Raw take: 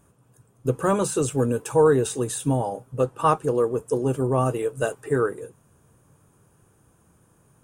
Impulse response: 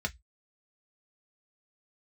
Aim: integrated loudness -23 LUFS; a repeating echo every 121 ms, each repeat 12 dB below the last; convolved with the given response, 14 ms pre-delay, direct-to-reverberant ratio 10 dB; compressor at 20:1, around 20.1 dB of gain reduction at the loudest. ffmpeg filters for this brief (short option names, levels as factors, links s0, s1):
-filter_complex "[0:a]acompressor=threshold=0.0224:ratio=20,aecho=1:1:121|242|363:0.251|0.0628|0.0157,asplit=2[s0][s1];[1:a]atrim=start_sample=2205,adelay=14[s2];[s1][s2]afir=irnorm=-1:irlink=0,volume=0.188[s3];[s0][s3]amix=inputs=2:normalize=0,volume=5.62"